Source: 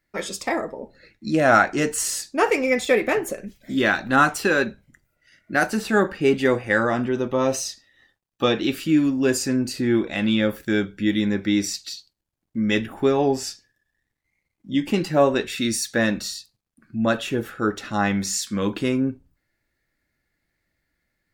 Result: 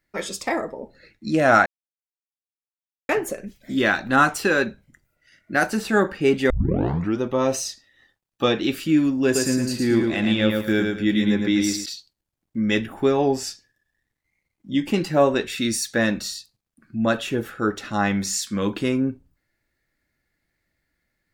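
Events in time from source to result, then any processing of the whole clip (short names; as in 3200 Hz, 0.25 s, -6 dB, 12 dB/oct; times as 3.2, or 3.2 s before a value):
1.66–3.09 mute
6.5 tape start 0.71 s
9.24–11.86 feedback echo 0.111 s, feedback 30%, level -4 dB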